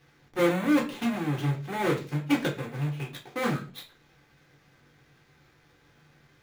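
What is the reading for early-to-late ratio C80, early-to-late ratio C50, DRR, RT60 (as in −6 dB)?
18.0 dB, 12.0 dB, −1.0 dB, 0.40 s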